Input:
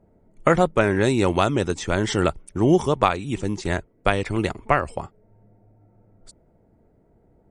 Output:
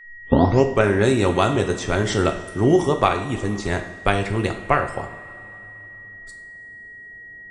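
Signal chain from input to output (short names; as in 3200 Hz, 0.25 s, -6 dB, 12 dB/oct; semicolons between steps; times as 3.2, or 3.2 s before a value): tape start at the beginning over 0.81 s; whine 1900 Hz -43 dBFS; two-slope reverb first 0.49 s, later 2.9 s, from -16 dB, DRR 4.5 dB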